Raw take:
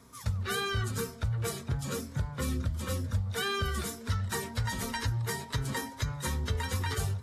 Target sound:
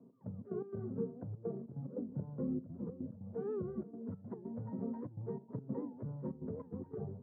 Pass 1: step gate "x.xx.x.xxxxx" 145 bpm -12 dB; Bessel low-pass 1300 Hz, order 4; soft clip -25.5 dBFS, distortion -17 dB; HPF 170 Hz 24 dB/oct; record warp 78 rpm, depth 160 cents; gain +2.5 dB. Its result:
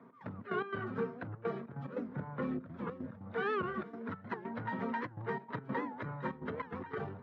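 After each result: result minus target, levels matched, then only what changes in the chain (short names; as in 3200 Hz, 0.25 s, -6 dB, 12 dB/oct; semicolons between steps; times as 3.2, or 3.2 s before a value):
1000 Hz band +14.5 dB; soft clip: distortion +12 dB
change: Bessel low-pass 380 Hz, order 4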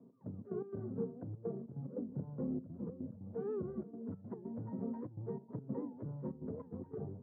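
soft clip: distortion +12 dB
change: soft clip -18 dBFS, distortion -29 dB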